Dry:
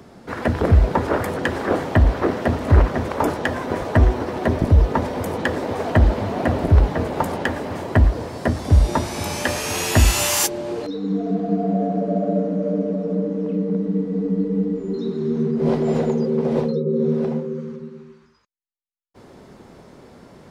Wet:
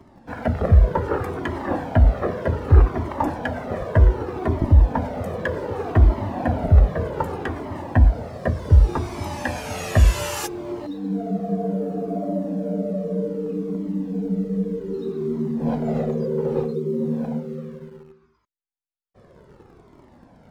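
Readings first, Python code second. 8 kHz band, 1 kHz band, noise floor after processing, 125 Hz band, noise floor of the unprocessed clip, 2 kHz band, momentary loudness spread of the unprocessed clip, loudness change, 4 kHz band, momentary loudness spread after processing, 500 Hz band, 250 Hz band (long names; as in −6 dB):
−12.0 dB, −3.5 dB, −53 dBFS, 0.0 dB, −48 dBFS, −5.5 dB, 8 LU, −1.5 dB, −9.5 dB, 11 LU, −3.5 dB, −3.5 dB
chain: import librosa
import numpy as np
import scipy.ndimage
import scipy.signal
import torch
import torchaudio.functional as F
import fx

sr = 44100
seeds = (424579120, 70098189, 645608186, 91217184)

p1 = fx.quant_dither(x, sr, seeds[0], bits=6, dither='none')
p2 = x + (p1 * librosa.db_to_amplitude(-10.0))
p3 = fx.high_shelf(p2, sr, hz=2400.0, db=-11.0)
y = fx.comb_cascade(p3, sr, direction='falling', hz=0.65)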